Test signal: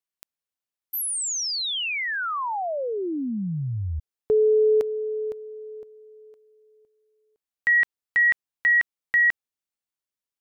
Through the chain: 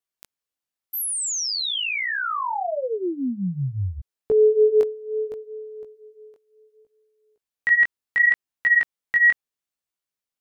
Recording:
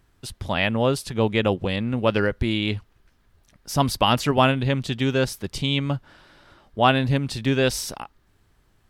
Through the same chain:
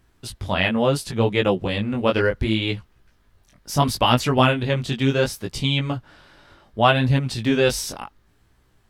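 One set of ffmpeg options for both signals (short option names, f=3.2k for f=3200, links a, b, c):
-af "flanger=delay=15.5:depth=6.5:speed=0.7,volume=4.5dB"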